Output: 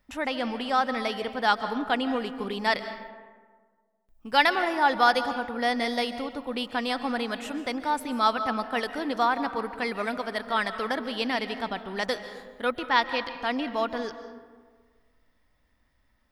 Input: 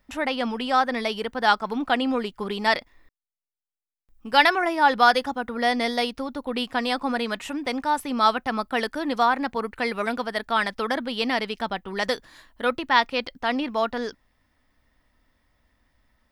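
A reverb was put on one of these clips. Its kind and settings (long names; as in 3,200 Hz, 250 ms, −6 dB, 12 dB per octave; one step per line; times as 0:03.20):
comb and all-pass reverb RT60 1.6 s, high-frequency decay 0.45×, pre-delay 100 ms, DRR 10.5 dB
level −3.5 dB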